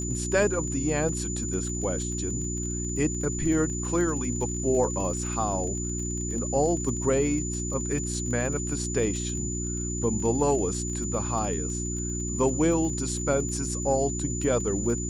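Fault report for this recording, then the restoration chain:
crackle 26/s -34 dBFS
hum 60 Hz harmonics 6 -32 dBFS
tone 7000 Hz -33 dBFS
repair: de-click; notch 7000 Hz, Q 30; de-hum 60 Hz, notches 6

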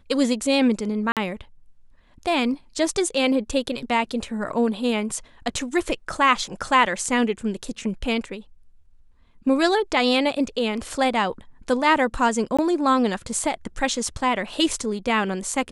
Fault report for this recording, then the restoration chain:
1.12–1.17 gap 47 ms
12.57–12.59 gap 16 ms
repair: interpolate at 1.12, 47 ms; interpolate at 12.57, 16 ms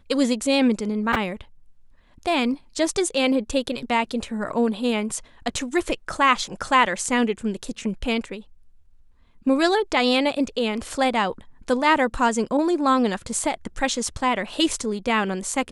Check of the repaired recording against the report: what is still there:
none

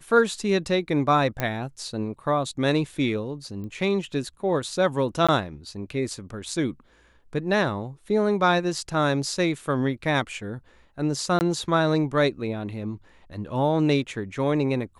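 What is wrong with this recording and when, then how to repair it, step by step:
1.4 pop -11 dBFS
3.64 pop -28 dBFS
5.27–5.29 gap 16 ms
11.39–11.41 gap 19 ms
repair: de-click; interpolate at 5.27, 16 ms; interpolate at 11.39, 19 ms

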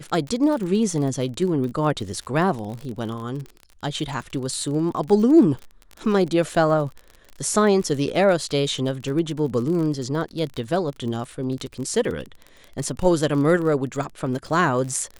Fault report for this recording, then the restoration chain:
crackle 37/s -29 dBFS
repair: de-click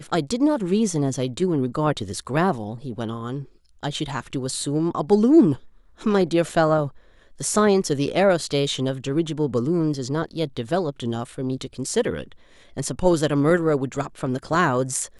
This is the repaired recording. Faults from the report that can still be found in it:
none

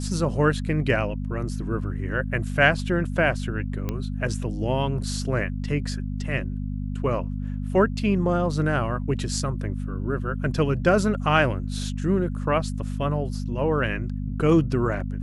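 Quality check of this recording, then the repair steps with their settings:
hum 50 Hz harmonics 5 -29 dBFS
3.89 pop -15 dBFS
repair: de-click; de-hum 50 Hz, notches 5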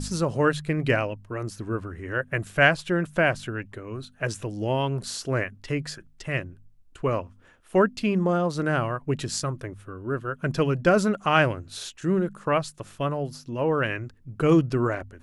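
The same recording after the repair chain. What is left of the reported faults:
none

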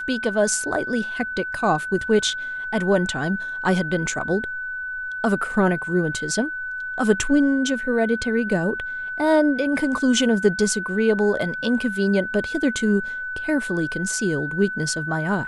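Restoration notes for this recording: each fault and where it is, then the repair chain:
tone 1500 Hz -27 dBFS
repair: notch 1500 Hz, Q 30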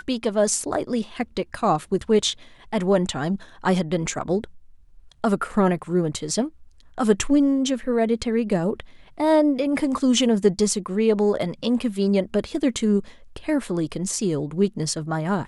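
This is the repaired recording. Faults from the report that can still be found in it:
none

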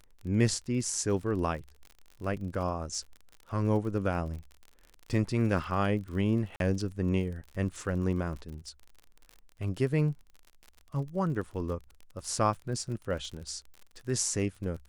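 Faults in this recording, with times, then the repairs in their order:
crackle 43/s -39 dBFS
6.56–6.6 gap 42 ms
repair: de-click; interpolate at 6.56, 42 ms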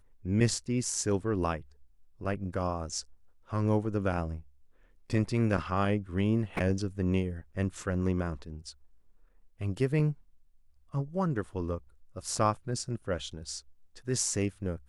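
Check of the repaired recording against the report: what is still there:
none

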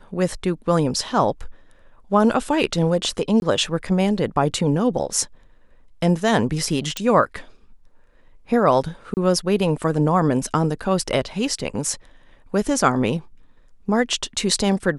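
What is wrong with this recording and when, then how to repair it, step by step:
3.4–3.42 gap 21 ms
6.97 pop
9.14–9.17 gap 29 ms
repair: de-click; interpolate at 3.4, 21 ms; interpolate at 9.14, 29 ms

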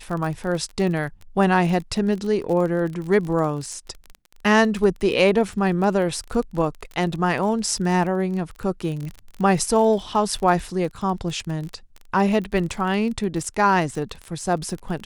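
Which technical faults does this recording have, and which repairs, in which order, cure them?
crackle 27/s -28 dBFS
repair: de-click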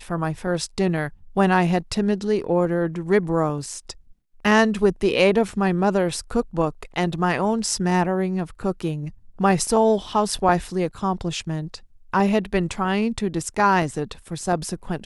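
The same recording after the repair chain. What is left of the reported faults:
none

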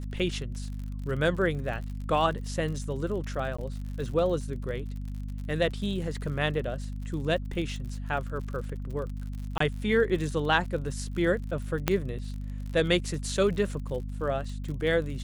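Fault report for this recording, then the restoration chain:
crackle 55/s -37 dBFS
hum 50 Hz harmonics 5 -35 dBFS
3.57–3.58 gap 15 ms
9.58–9.6 gap 24 ms
11.88 pop -8 dBFS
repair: de-click; de-hum 50 Hz, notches 5; interpolate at 3.57, 15 ms; interpolate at 9.58, 24 ms

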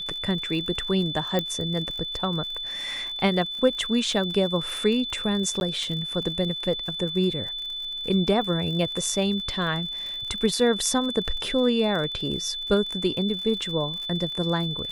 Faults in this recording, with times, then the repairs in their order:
crackle 58/s -33 dBFS
tone 3500 Hz -30 dBFS
1.39 pop -12 dBFS
5.6–5.61 gap 11 ms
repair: de-click; notch 3500 Hz, Q 30; interpolate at 5.6, 11 ms

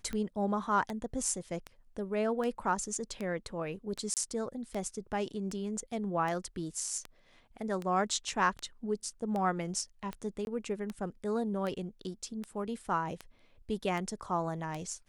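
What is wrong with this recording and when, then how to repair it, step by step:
tick 78 rpm -24 dBFS
4.14–4.17 gap 28 ms
10.45–10.47 gap 21 ms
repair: de-click; interpolate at 4.14, 28 ms; interpolate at 10.45, 21 ms

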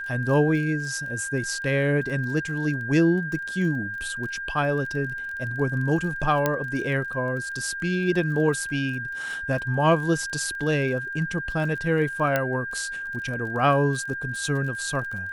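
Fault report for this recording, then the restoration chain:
crackle 28/s -34 dBFS
tone 1600 Hz -30 dBFS
6.46 pop -8 dBFS
12.36 pop -9 dBFS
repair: de-click; notch 1600 Hz, Q 30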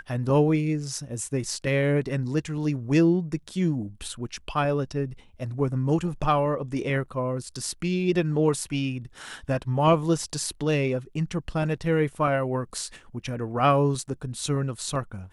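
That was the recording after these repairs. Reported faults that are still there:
none

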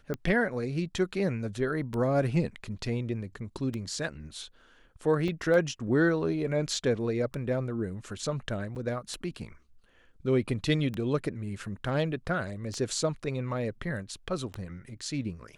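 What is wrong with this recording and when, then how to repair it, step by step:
tick 33 1/3 rpm -21 dBFS
5.28 gap 4 ms
8.75–8.76 gap 7.1 ms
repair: de-click; interpolate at 5.28, 4 ms; interpolate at 8.75, 7.1 ms

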